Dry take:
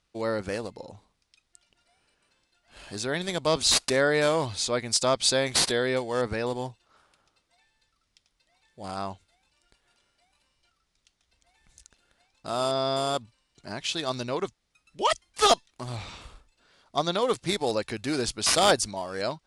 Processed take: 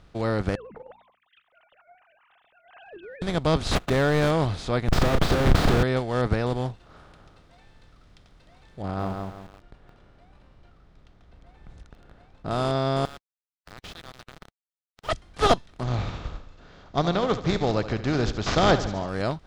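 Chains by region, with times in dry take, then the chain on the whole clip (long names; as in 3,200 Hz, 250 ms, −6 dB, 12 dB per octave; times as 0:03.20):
0:00.55–0:03.22: three sine waves on the formant tracks + mains-hum notches 60/120/180/240 Hz + downward compressor 2.5 to 1, threshold −46 dBFS
0:03.75–0:04.31: running median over 9 samples + high-shelf EQ 3,800 Hz +8 dB + hard clipping −17.5 dBFS
0:04.88–0:05.83: high-frequency loss of the air 50 metres + comparator with hysteresis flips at −32.5 dBFS + double-tracking delay 34 ms −9 dB
0:08.82–0:12.51: low-pass filter 1,100 Hz 6 dB per octave + feedback echo at a low word length 169 ms, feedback 35%, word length 9 bits, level −4 dB
0:13.05–0:15.09: downward compressor 3 to 1, threshold −33 dBFS + high-pass filter 1,500 Hz + centre clipping without the shift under −37.5 dBFS
0:15.83–0:19.09: bad sample-rate conversion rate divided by 3×, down none, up filtered + repeating echo 72 ms, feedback 48%, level −15 dB
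whole clip: compressor on every frequency bin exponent 0.6; bass and treble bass +13 dB, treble −12 dB; expander for the loud parts 1.5 to 1, over −30 dBFS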